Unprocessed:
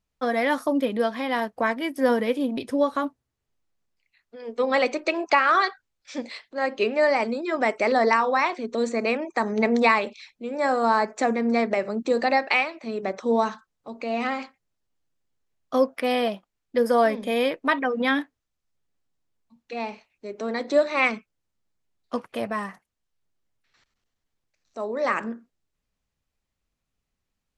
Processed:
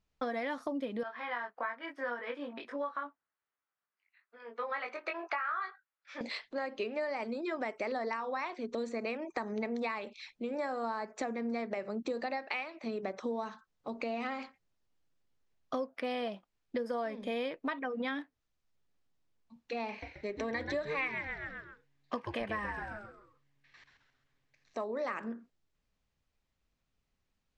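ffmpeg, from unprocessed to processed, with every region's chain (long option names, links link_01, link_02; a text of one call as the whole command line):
ffmpeg -i in.wav -filter_complex "[0:a]asettb=1/sr,asplit=3[link_01][link_02][link_03];[link_01]atrim=end=1.034[link_04];[link_02]atrim=start=1.03:end=6.21,asetpts=PTS-STARTPTS,afade=type=in:duration=0.004:curve=qsin,afade=type=out:start_time=5.176:duration=0.004:curve=qsin,bandpass=frequency=1400:width_type=q:width=1.9,asplit=2[link_05][link_06];[link_06]adelay=21,volume=-3dB[link_07];[link_05][link_07]amix=inputs=2:normalize=0,atrim=end_sample=228438[link_08];[link_03]atrim=start=6.206[link_09];[link_04][link_08]acrossfade=duration=0.004:curve1=hsin:curve2=qsin[link_10];[link_10][link_09]acrossfade=duration=0.004:curve1=qsin:curve2=hsin,asettb=1/sr,asplit=3[link_11][link_12][link_13];[link_11]atrim=end=19.894[link_14];[link_12]atrim=start=19.89:end=24.84,asetpts=PTS-STARTPTS,afade=type=in:duration=0.004:curve=qsin,afade=type=out:start_time=4.946:duration=0.004:curve=qsin,asuperstop=centerf=1400:order=4:qfactor=5.8,equalizer=frequency=1800:width=1:gain=9,asplit=6[link_15][link_16][link_17][link_18][link_19][link_20];[link_16]adelay=132,afreqshift=-140,volume=-7dB[link_21];[link_17]adelay=264,afreqshift=-280,volume=-15dB[link_22];[link_18]adelay=396,afreqshift=-420,volume=-22.9dB[link_23];[link_19]adelay=528,afreqshift=-560,volume=-30.9dB[link_24];[link_20]adelay=660,afreqshift=-700,volume=-38.8dB[link_25];[link_15][link_21][link_22][link_23][link_24][link_25]amix=inputs=6:normalize=0,atrim=end_sample=218295[link_26];[link_13]atrim=start=24.836[link_27];[link_14][link_26]acrossfade=duration=0.004:curve1=hsin:curve2=qsin[link_28];[link_28][link_27]acrossfade=duration=0.004:curve1=qsin:curve2=hsin,lowpass=6200,acompressor=threshold=-34dB:ratio=6" out.wav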